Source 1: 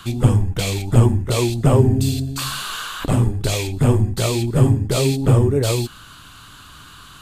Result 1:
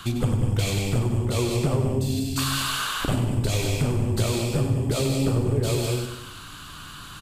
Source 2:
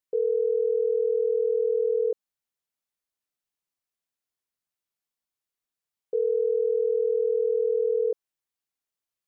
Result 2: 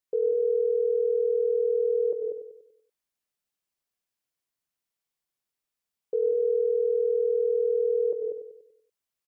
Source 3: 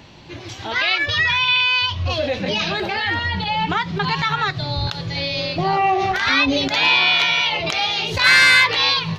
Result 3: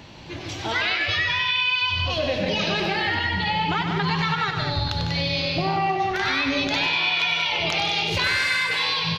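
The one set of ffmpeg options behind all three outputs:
-filter_complex "[0:a]asplit=2[s0][s1];[s1]aecho=0:1:151.6|192.4:0.282|0.398[s2];[s0][s2]amix=inputs=2:normalize=0,acompressor=threshold=0.0891:ratio=6,asplit=2[s3][s4];[s4]aecho=0:1:96|192|288|384|480|576:0.398|0.191|0.0917|0.044|0.0211|0.0101[s5];[s3][s5]amix=inputs=2:normalize=0"

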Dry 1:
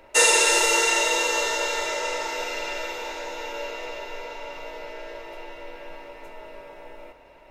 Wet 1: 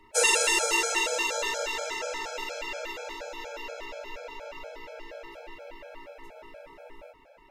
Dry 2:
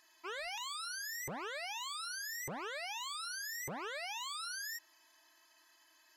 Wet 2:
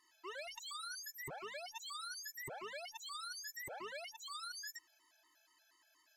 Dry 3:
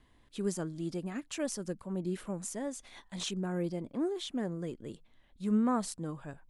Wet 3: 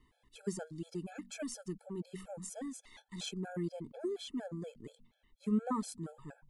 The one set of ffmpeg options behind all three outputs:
-af "bandreject=f=47.61:t=h:w=4,bandreject=f=95.22:t=h:w=4,bandreject=f=142.83:t=h:w=4,bandreject=f=190.44:t=h:w=4,bandreject=f=238.05:t=h:w=4,afftfilt=real='re*gt(sin(2*PI*4.2*pts/sr)*(1-2*mod(floor(b*sr/1024/440),2)),0)':imag='im*gt(sin(2*PI*4.2*pts/sr)*(1-2*mod(floor(b*sr/1024/440),2)),0)':win_size=1024:overlap=0.75,volume=0.794"

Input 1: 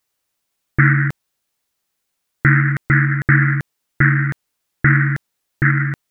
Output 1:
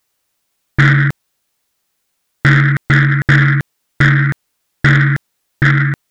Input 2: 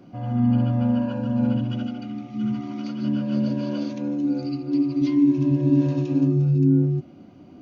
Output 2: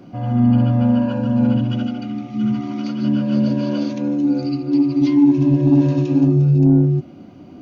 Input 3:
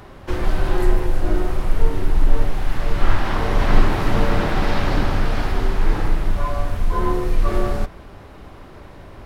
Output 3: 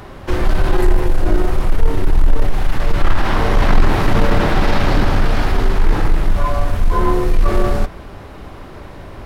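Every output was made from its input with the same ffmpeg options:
-af "acontrast=86,volume=0.891"

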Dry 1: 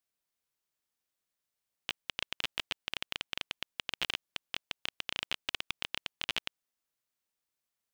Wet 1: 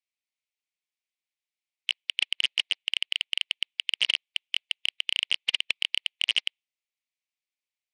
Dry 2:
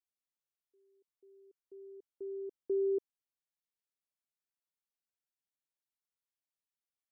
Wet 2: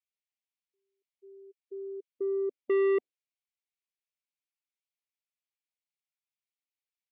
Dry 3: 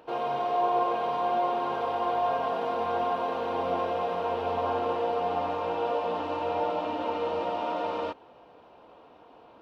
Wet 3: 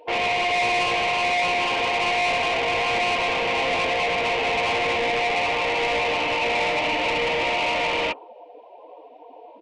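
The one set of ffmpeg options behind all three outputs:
-filter_complex "[0:a]afftdn=nr=26:nf=-45,asplit=2[s0][s1];[s1]highpass=f=720:p=1,volume=22.4,asoftclip=type=tanh:threshold=0.188[s2];[s0][s2]amix=inputs=2:normalize=0,lowpass=f=3100:p=1,volume=0.501,highshelf=f=1800:t=q:w=3:g=7,aresample=22050,aresample=44100,volume=0.75"

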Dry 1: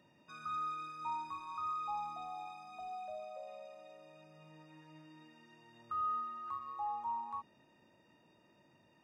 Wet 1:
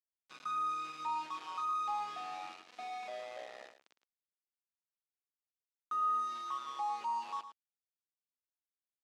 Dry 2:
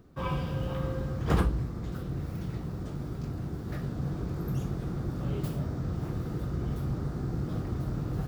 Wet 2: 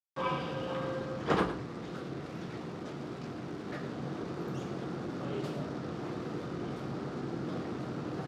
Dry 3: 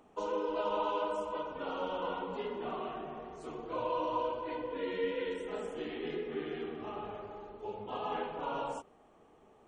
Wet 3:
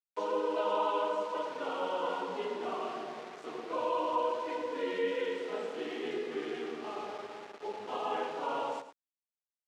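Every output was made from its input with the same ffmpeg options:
-af "aeval=exprs='val(0)*gte(abs(val(0)),0.00501)':c=same,highpass=270,lowpass=5100,aecho=1:1:109:0.266,volume=1.33"

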